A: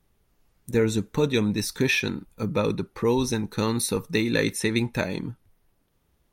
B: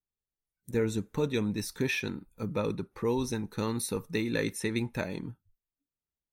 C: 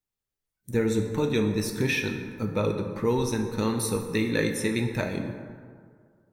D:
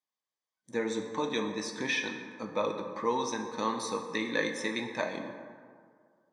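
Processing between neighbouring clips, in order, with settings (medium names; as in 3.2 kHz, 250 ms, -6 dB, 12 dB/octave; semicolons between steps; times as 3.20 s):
spectral noise reduction 24 dB; peaking EQ 4.1 kHz -3 dB 1.6 oct; trim -6.5 dB
plate-style reverb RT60 2 s, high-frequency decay 0.45×, DRR 4 dB; trim +3.5 dB
cabinet simulation 340–6800 Hz, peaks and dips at 400 Hz -10 dB, 1.1 kHz +7 dB, 2.4 kHz -4 dB; comb of notches 1.4 kHz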